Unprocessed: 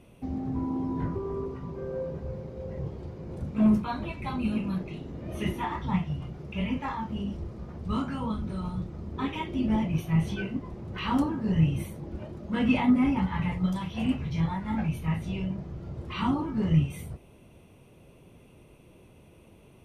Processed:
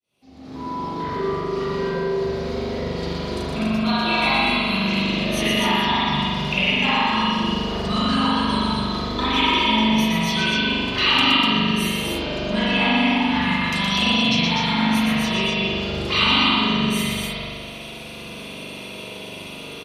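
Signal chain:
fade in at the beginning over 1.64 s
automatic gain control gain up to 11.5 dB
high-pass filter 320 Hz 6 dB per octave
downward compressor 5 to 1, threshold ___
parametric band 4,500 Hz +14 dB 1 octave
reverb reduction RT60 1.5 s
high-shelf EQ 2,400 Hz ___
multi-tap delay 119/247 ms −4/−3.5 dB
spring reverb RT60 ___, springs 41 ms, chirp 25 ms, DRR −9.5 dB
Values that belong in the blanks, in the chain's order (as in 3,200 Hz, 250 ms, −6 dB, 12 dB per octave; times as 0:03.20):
−31 dBFS, +9.5 dB, 2.2 s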